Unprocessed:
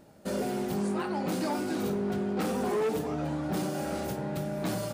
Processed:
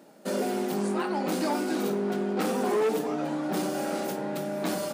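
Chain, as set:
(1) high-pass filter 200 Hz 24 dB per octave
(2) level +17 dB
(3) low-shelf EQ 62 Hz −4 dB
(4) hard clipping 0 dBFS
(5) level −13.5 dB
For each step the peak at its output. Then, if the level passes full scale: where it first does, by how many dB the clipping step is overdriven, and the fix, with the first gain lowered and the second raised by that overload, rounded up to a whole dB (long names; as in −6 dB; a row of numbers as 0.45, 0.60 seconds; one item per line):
−19.0, −2.0, −2.0, −2.0, −15.5 dBFS
no step passes full scale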